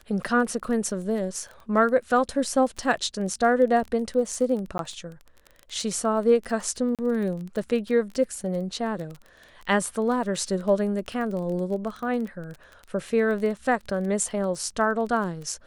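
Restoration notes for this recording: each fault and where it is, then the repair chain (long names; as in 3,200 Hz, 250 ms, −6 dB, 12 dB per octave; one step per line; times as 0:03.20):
surface crackle 21 per second −32 dBFS
0:04.78–0:04.79: drop-out 12 ms
0:06.95–0:06.99: drop-out 37 ms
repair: click removal
repair the gap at 0:04.78, 12 ms
repair the gap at 0:06.95, 37 ms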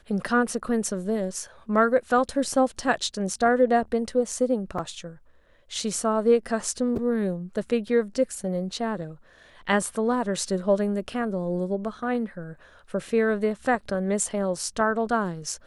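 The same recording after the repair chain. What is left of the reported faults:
none of them is left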